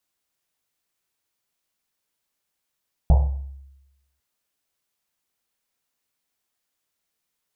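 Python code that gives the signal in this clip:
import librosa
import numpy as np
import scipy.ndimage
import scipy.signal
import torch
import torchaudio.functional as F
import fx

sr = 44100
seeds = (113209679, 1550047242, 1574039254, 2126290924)

y = fx.risset_drum(sr, seeds[0], length_s=1.1, hz=68.0, decay_s=1.01, noise_hz=680.0, noise_width_hz=440.0, noise_pct=10)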